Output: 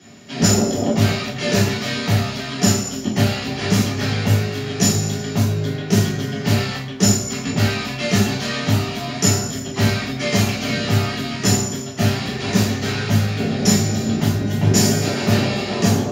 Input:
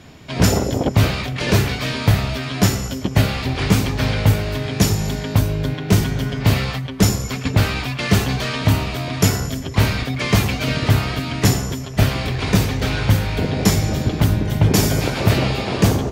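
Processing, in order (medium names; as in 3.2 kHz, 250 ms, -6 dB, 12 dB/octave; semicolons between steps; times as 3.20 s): high-pass 310 Hz 12 dB/octave; reverberation RT60 0.45 s, pre-delay 10 ms, DRR -6 dB; trim -8.5 dB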